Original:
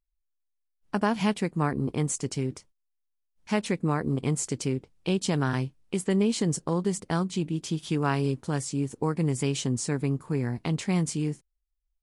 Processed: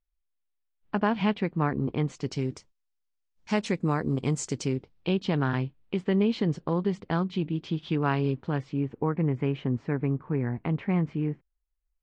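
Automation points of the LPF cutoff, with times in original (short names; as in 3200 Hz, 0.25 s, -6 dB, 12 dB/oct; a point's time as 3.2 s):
LPF 24 dB/oct
2.04 s 3600 Hz
2.5 s 7100 Hz
4.59 s 7100 Hz
5.17 s 3700 Hz
8.28 s 3700 Hz
9.19 s 2300 Hz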